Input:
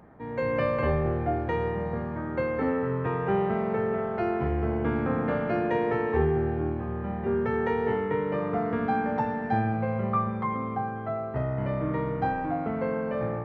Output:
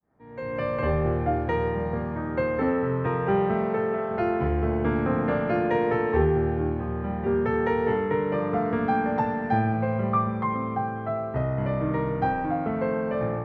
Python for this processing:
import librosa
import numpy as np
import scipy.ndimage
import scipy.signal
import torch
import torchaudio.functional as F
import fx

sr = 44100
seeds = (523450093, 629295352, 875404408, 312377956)

y = fx.fade_in_head(x, sr, length_s=1.09)
y = fx.highpass(y, sr, hz=fx.line((3.66, 140.0), (4.09, 300.0)), slope=6, at=(3.66, 4.09), fade=0.02)
y = y * 10.0 ** (2.5 / 20.0)